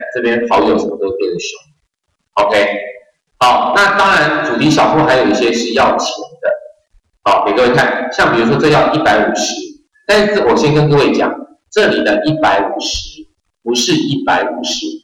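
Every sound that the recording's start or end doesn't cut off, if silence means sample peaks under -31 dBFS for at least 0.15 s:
2.36–2.98 s
3.41–6.67 s
7.25–9.72 s
10.08–11.45 s
11.73–13.22 s

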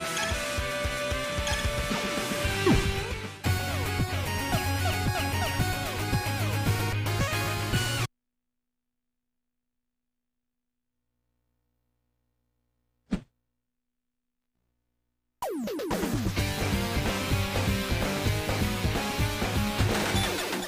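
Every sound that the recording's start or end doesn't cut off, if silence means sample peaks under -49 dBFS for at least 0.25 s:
13.11–13.23 s

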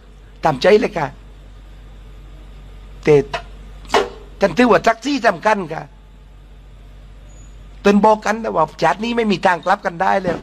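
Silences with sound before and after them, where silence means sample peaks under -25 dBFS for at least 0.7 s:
1.09–3.03 s
5.83–7.85 s

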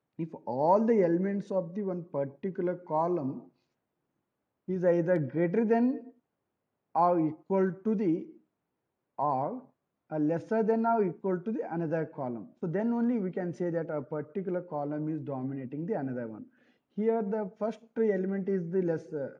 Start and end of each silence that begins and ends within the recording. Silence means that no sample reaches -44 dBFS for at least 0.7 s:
3.42–4.68 s
6.09–6.95 s
8.30–9.19 s

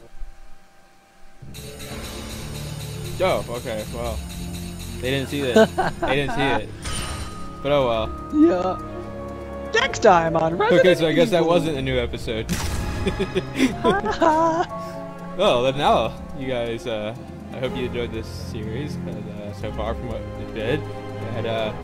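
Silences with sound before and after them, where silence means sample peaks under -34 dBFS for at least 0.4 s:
0.56–1.24 s

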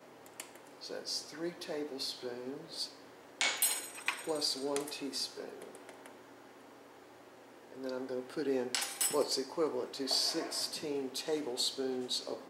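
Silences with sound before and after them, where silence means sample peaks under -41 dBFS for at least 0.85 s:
6.06–7.72 s

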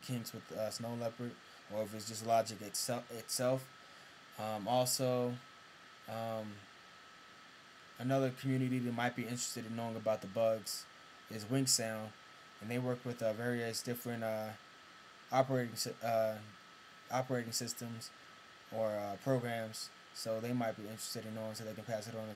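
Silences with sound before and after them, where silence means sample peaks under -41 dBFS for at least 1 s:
6.51–8.00 s

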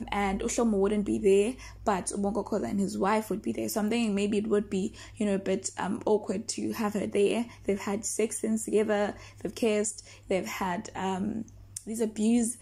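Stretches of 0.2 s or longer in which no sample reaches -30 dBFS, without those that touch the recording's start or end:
1.51–1.87 s
4.87–5.20 s
7.43–7.68 s
9.11–9.45 s
9.99–10.30 s
11.42–11.77 s

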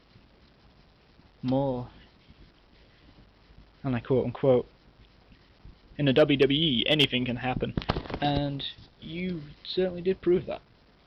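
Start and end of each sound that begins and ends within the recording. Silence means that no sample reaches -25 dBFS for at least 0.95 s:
1.46–1.78 s
3.85–4.61 s

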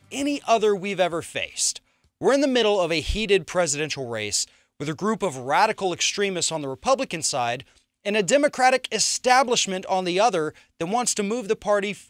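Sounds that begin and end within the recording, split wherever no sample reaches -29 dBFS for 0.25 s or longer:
2.21–4.44 s
4.81–7.60 s
8.06–10.49 s

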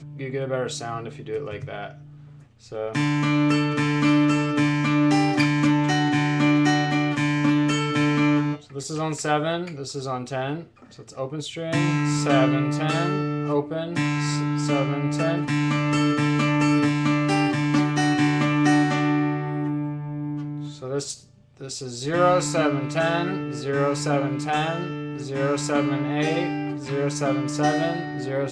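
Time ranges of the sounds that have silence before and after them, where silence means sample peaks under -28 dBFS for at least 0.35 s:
2.72–10.60 s
11.18–21.13 s

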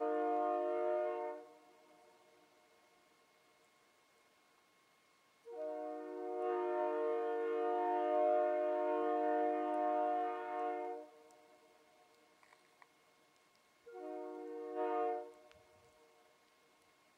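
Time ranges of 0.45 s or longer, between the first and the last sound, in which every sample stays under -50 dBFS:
1.44–5.47 s
11.31–12.43 s
12.82–13.88 s

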